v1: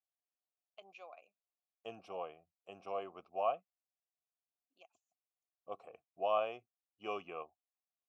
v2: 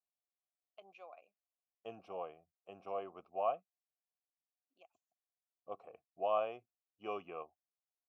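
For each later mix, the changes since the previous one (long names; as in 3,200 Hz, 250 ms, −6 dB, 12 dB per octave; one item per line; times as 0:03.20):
master: add high-shelf EQ 3,100 Hz −11 dB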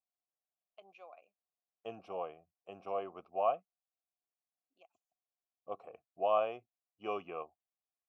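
second voice +3.5 dB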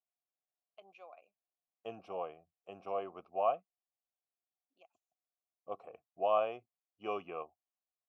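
nothing changed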